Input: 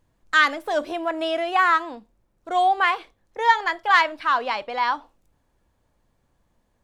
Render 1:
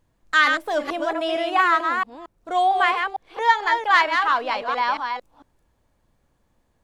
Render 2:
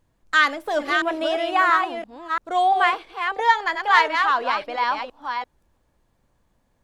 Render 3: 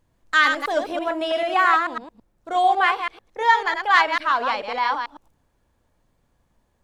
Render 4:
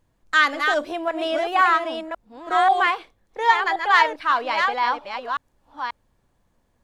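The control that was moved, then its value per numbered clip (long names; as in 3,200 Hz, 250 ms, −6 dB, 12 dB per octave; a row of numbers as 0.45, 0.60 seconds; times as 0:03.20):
delay that plays each chunk backwards, delay time: 226, 340, 110, 537 milliseconds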